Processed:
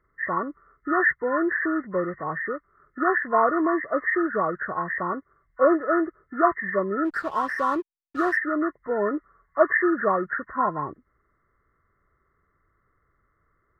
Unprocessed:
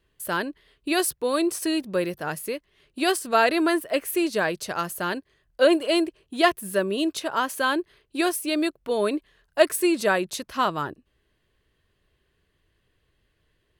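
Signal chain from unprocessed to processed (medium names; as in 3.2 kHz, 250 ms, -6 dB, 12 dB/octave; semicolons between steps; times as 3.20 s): knee-point frequency compression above 1 kHz 4:1; 7.05–8.37 s: hysteresis with a dead band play -35.5 dBFS; trim -1 dB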